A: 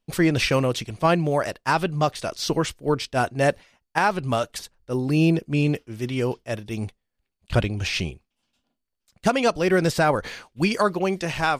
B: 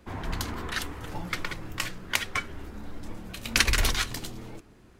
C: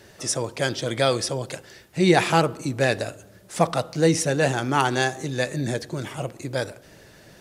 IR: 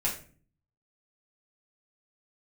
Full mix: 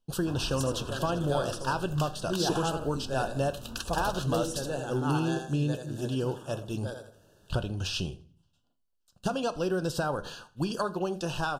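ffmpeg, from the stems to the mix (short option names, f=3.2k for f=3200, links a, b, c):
-filter_complex "[0:a]acompressor=threshold=-22dB:ratio=6,volume=-5dB,asplit=3[a][b][c];[b]volume=-16dB[d];[c]volume=-20.5dB[e];[1:a]acompressor=threshold=-35dB:ratio=2.5,adelay=200,volume=-2.5dB[f];[2:a]equalizer=f=4.6k:w=1.5:g=-4.5,adelay=300,volume=-13dB,asplit=2[g][h];[h]volume=-6dB[i];[3:a]atrim=start_sample=2205[j];[d][j]afir=irnorm=-1:irlink=0[k];[e][i]amix=inputs=2:normalize=0,aecho=0:1:82|164|246|328:1|0.31|0.0961|0.0298[l];[a][f][g][k][l]amix=inputs=5:normalize=0,asuperstop=centerf=2100:order=8:qfactor=2.1"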